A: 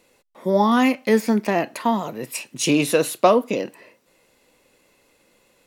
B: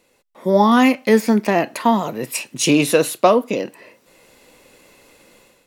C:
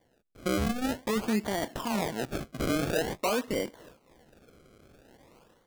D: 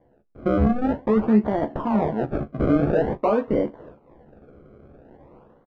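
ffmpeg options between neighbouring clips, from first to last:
ffmpeg -i in.wav -af "dynaudnorm=framelen=270:gausssize=3:maxgain=11dB,volume=-1dB" out.wav
ffmpeg -i in.wav -af "alimiter=limit=-13dB:level=0:latency=1:release=21,acrusher=samples=33:mix=1:aa=0.000001:lfo=1:lforange=33:lforate=0.48,volume=-7dB" out.wav
ffmpeg -i in.wav -filter_complex "[0:a]lowpass=1000,asplit=2[link_01][link_02];[link_02]aecho=0:1:14|38:0.422|0.126[link_03];[link_01][link_03]amix=inputs=2:normalize=0,volume=8.5dB" out.wav

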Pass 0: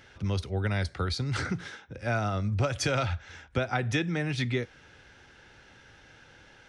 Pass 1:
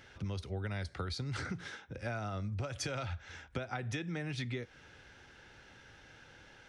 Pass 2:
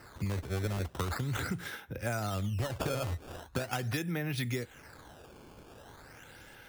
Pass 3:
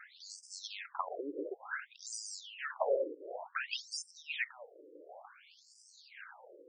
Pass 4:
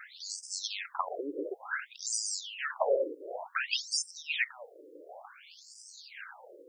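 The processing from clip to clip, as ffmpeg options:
ffmpeg -i in.wav -af "acompressor=threshold=-33dB:ratio=5,volume=-2.5dB" out.wav
ffmpeg -i in.wav -af "acrusher=samples=13:mix=1:aa=0.000001:lfo=1:lforange=20.8:lforate=0.41,volume=4.5dB" out.wav
ffmpeg -i in.wav -af "afftfilt=real='re*between(b*sr/1024,390*pow(6700/390,0.5+0.5*sin(2*PI*0.56*pts/sr))/1.41,390*pow(6700/390,0.5+0.5*sin(2*PI*0.56*pts/sr))*1.41)':imag='im*between(b*sr/1024,390*pow(6700/390,0.5+0.5*sin(2*PI*0.56*pts/sr))/1.41,390*pow(6700/390,0.5+0.5*sin(2*PI*0.56*pts/sr))*1.41)':win_size=1024:overlap=0.75,volume=6.5dB" out.wav
ffmpeg -i in.wav -af "highshelf=frequency=3500:gain=8.5,volume=3.5dB" out.wav

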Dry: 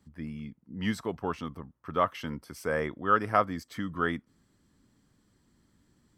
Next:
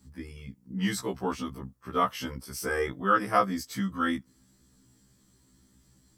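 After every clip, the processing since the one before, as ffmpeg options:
ffmpeg -i in.wav -af "bass=frequency=250:gain=4,treble=frequency=4000:gain=11,afftfilt=real='re*1.73*eq(mod(b,3),0)':imag='im*1.73*eq(mod(b,3),0)':win_size=2048:overlap=0.75,volume=3dB" out.wav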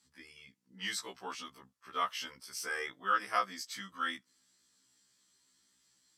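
ffmpeg -i in.wav -af "bandpass=frequency=3800:width_type=q:width=0.64:csg=0" out.wav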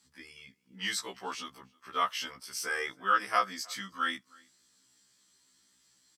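ffmpeg -i in.wav -filter_complex "[0:a]asplit=2[link_01][link_02];[link_02]adelay=314.9,volume=-26dB,highshelf=frequency=4000:gain=-7.08[link_03];[link_01][link_03]amix=inputs=2:normalize=0,volume=4dB" out.wav

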